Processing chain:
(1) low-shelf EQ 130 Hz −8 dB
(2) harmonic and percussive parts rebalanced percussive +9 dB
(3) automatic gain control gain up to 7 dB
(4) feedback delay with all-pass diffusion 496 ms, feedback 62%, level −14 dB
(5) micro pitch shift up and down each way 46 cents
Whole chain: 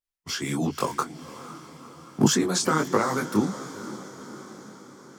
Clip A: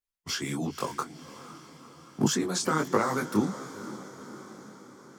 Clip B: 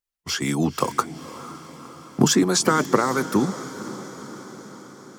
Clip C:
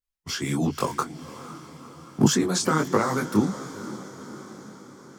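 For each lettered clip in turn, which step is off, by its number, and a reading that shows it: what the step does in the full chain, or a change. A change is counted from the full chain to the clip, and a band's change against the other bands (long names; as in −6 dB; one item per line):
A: 3, change in integrated loudness −4.0 LU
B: 5, change in integrated loudness +3.5 LU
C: 1, 125 Hz band +3.0 dB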